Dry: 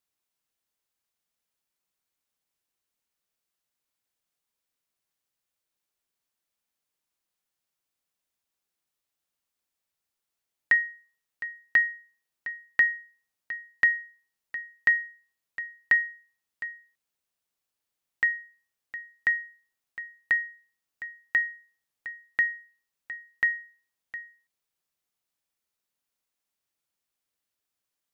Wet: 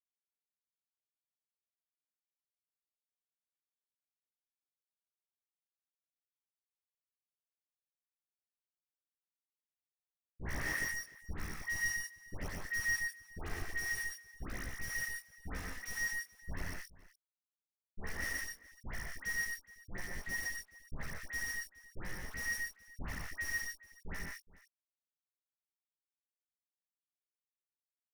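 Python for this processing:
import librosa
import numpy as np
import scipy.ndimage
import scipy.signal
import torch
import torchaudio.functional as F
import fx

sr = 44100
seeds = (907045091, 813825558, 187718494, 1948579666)

p1 = fx.spec_swells(x, sr, rise_s=0.76)
p2 = fx.low_shelf(p1, sr, hz=82.0, db=-6.5)
p3 = fx.level_steps(p2, sr, step_db=14)
p4 = fx.schmitt(p3, sr, flips_db=-37.0)
p5 = fx.chorus_voices(p4, sr, voices=2, hz=0.24, base_ms=13, depth_ms=2.9, mix_pct=60)
p6 = fx.dispersion(p5, sr, late='highs', ms=99.0, hz=1300.0)
p7 = p6 + fx.echo_multitap(p6, sr, ms=(121, 144, 163, 420), db=(-3.5, -6.5, -17.5, -19.5), dry=0)
y = p7 * 10.0 ** (2.0 / 20.0)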